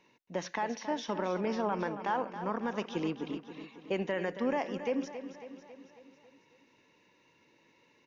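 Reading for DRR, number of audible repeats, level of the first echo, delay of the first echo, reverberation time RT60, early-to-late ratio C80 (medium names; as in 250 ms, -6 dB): no reverb, 5, -11.0 dB, 274 ms, no reverb, no reverb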